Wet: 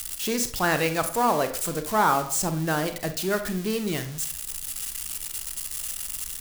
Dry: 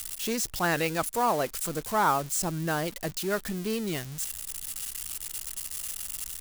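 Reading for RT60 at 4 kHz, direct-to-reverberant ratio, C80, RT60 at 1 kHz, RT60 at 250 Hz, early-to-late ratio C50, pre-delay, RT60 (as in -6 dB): 0.30 s, 8.0 dB, 14.5 dB, 0.50 s, 0.45 s, 10.5 dB, 32 ms, 0.50 s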